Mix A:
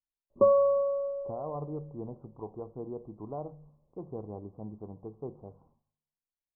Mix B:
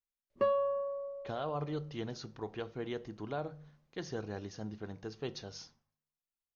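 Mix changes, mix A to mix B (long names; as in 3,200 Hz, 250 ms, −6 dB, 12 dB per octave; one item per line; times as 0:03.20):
background −8.5 dB
master: remove Butterworth low-pass 1,100 Hz 72 dB per octave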